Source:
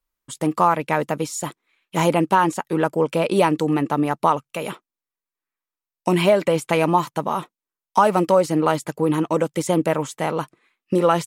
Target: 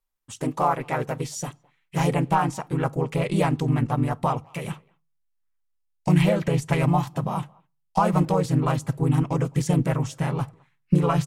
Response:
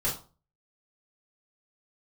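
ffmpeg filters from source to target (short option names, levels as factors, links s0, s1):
-filter_complex "[0:a]asubboost=boost=9.5:cutoff=130,asplit=2[s0][s1];[s1]adelay=210,highpass=300,lowpass=3400,asoftclip=type=hard:threshold=0.224,volume=0.0398[s2];[s0][s2]amix=inputs=2:normalize=0,asplit=3[s3][s4][s5];[s4]asetrate=35002,aresample=44100,atempo=1.25992,volume=0.282[s6];[s5]asetrate=37084,aresample=44100,atempo=1.18921,volume=1[s7];[s3][s6][s7]amix=inputs=3:normalize=0,asplit=2[s8][s9];[1:a]atrim=start_sample=2205[s10];[s9][s10]afir=irnorm=-1:irlink=0,volume=0.0376[s11];[s8][s11]amix=inputs=2:normalize=0,volume=0.398"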